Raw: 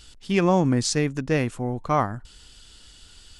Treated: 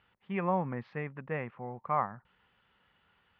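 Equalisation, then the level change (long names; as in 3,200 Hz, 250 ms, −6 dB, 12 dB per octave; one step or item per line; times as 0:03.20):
high-frequency loss of the air 270 metres
loudspeaker in its box 250–2,100 Hz, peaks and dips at 260 Hz −8 dB, 440 Hz −6 dB, 650 Hz −7 dB, 1,500 Hz −6 dB
parametric band 320 Hz −13.5 dB 0.47 octaves
−2.5 dB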